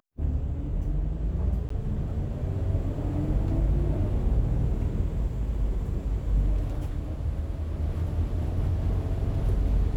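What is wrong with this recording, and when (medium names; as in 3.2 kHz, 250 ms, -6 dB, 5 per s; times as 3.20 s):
1.69–1.70 s: dropout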